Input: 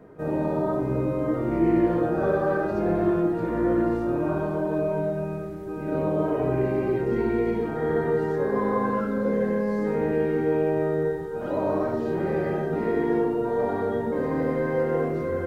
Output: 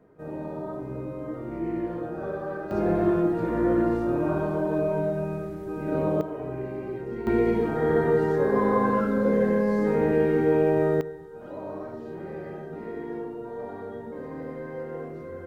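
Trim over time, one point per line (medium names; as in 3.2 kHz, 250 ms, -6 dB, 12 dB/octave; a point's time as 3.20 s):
-9 dB
from 2.71 s 0 dB
from 6.21 s -9 dB
from 7.27 s +2 dB
from 11.01 s -11 dB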